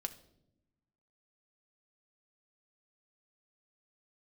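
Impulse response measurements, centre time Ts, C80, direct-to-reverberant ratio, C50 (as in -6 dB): 5 ms, 17.5 dB, 7.0 dB, 15.0 dB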